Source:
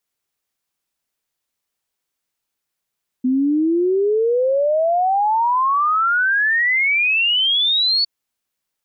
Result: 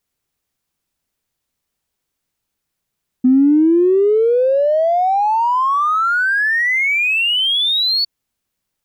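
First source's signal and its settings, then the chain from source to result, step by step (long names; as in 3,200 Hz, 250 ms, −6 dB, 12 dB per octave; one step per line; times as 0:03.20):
exponential sine sweep 250 Hz → 4,500 Hz 4.81 s −14 dBFS
in parallel at −11.5 dB: hard clipping −26.5 dBFS
on the sum: low-shelf EQ 270 Hz +11 dB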